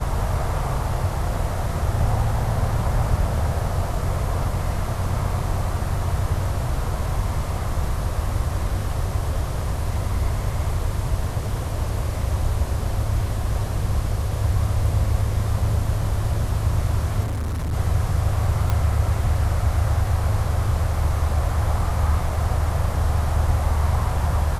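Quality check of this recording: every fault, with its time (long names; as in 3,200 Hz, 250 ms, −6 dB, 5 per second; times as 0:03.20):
0:17.23–0:17.74: clipping −22.5 dBFS
0:18.70: click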